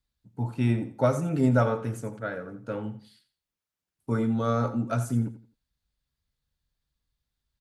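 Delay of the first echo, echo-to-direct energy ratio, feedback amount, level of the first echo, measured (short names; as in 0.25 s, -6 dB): 85 ms, -13.0 dB, 27%, -13.5 dB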